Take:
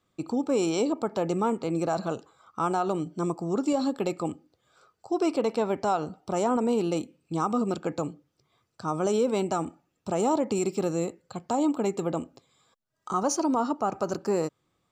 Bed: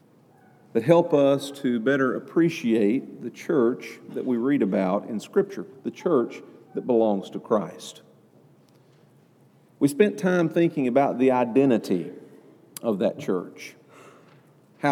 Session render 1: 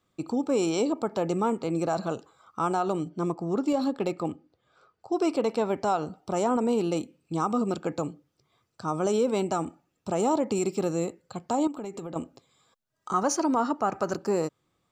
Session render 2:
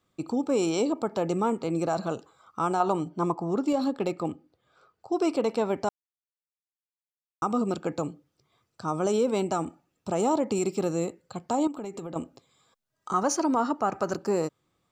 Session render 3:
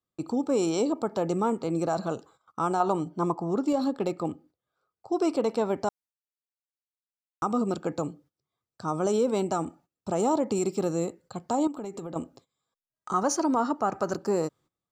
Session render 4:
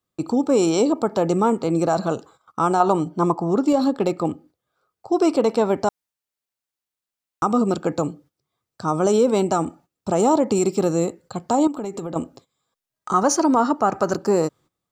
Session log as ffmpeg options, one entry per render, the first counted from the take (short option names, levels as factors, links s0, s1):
-filter_complex "[0:a]asettb=1/sr,asplit=3[s0][s1][s2];[s0]atrim=end=3.094[s3];[s1]atrim=start=3.09:end=5.12,asetpts=PTS-STARTPTS,afade=t=in:d=0.004:c=qsin,afade=t=out:st=2.026:d=0.004:c=qsin,adynamicsmooth=sensitivity=7:basefreq=4700[s4];[s2]atrim=start=5.116[s5];[s3][s4]acrossfade=d=0.004:c1=hsin:c2=qsin[s6];[s6][s5]acrossfade=d=0.004:c1=qsin:c2=hsin,asettb=1/sr,asplit=3[s7][s8][s9];[s7]atrim=end=11.674[s10];[s8]atrim=start=11.67:end=12.16,asetpts=PTS-STARTPTS,afade=t=in:d=0.004:c=qsin,afade=t=out:st=0.486:d=0.004:c=qsin,acompressor=threshold=0.0224:ratio=6:attack=3.2:release=140:knee=1:detection=peak[s11];[s9]atrim=start=12.156[s12];[s10][s11]acrossfade=d=0.004:c1=hsin:c2=qsin[s13];[s13][s12]acrossfade=d=0.004:c1=qsin:c2=hsin,asettb=1/sr,asplit=3[s14][s15][s16];[s14]atrim=end=13.124[s17];[s15]atrim=start=13.12:end=14.15,asetpts=PTS-STARTPTS,afade=t=in:d=0.004:c=qsin,afade=t=out:st=1.026:d=0.004:c=qsin,equalizer=f=1800:t=o:w=0.68:g=8.5[s18];[s16]atrim=start=14.146[s19];[s17][s18]acrossfade=d=0.004:c1=hsin:c2=qsin[s20];[s20][s19]acrossfade=d=0.004:c1=qsin:c2=hsin"
-filter_complex "[0:a]asettb=1/sr,asplit=3[s0][s1][s2];[s0]atrim=end=2.804[s3];[s1]atrim=start=2.8:end=3.51,asetpts=PTS-STARTPTS,afade=t=in:d=0.004:c=qsin,afade=t=out:st=0.706:d=0.004:c=qsin,equalizer=f=930:t=o:w=0.66:g=9.5[s4];[s2]atrim=start=3.506[s5];[s3][s4]acrossfade=d=0.004:c1=hsin:c2=qsin[s6];[s6][s5]acrossfade=d=0.004:c1=qsin:c2=hsin,asplit=3[s7][s8][s9];[s7]atrim=end=5.89,asetpts=PTS-STARTPTS,afade=t=out:st=5.886:d=0.004:c=hsin[s10];[s8]atrim=start=5.89:end=7.42,asetpts=PTS-STARTPTS,volume=0[s11];[s9]atrim=start=7.42,asetpts=PTS-STARTPTS,afade=t=in:d=0.004:c=hsin[s12];[s10][s11][s12]concat=n=3:v=0:a=1"
-af "agate=range=0.141:threshold=0.002:ratio=16:detection=peak,equalizer=f=2500:w=1.8:g=-4.5"
-af "volume=2.37"